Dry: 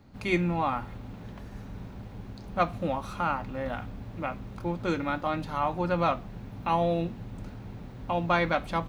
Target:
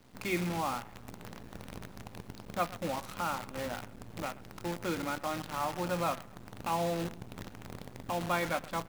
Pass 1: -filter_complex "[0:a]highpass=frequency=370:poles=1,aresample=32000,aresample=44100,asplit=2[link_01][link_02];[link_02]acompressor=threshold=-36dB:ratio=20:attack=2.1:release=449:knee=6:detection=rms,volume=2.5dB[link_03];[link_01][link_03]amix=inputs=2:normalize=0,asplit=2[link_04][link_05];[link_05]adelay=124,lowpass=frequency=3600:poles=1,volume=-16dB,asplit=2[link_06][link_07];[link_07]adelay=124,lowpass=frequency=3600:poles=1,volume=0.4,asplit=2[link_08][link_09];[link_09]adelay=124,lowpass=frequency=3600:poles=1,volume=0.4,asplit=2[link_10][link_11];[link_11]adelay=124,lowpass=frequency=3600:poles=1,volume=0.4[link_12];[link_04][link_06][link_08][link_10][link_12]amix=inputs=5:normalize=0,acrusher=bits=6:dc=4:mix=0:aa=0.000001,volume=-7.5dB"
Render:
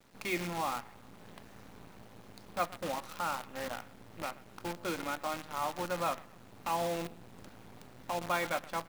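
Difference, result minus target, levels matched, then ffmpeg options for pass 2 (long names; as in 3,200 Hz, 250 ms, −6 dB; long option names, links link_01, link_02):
125 Hz band −5.5 dB
-filter_complex "[0:a]highpass=frequency=100:poles=1,aresample=32000,aresample=44100,asplit=2[link_01][link_02];[link_02]acompressor=threshold=-36dB:ratio=20:attack=2.1:release=449:knee=6:detection=rms,volume=2.5dB[link_03];[link_01][link_03]amix=inputs=2:normalize=0,asplit=2[link_04][link_05];[link_05]adelay=124,lowpass=frequency=3600:poles=1,volume=-16dB,asplit=2[link_06][link_07];[link_07]adelay=124,lowpass=frequency=3600:poles=1,volume=0.4,asplit=2[link_08][link_09];[link_09]adelay=124,lowpass=frequency=3600:poles=1,volume=0.4,asplit=2[link_10][link_11];[link_11]adelay=124,lowpass=frequency=3600:poles=1,volume=0.4[link_12];[link_04][link_06][link_08][link_10][link_12]amix=inputs=5:normalize=0,acrusher=bits=6:dc=4:mix=0:aa=0.000001,volume=-7.5dB"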